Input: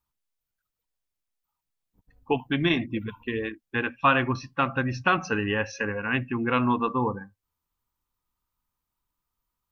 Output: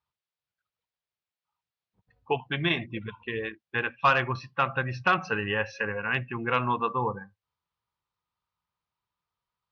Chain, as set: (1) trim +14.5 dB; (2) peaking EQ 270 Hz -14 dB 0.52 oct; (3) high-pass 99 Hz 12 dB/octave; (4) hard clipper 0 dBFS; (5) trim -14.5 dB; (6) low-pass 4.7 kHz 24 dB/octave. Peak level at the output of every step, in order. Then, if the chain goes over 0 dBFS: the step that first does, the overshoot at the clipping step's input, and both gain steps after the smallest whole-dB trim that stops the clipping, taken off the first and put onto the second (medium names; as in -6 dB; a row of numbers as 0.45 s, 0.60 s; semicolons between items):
+6.0 dBFS, +5.5 dBFS, +5.5 dBFS, 0.0 dBFS, -14.5 dBFS, -13.0 dBFS; step 1, 5.5 dB; step 1 +8.5 dB, step 5 -8.5 dB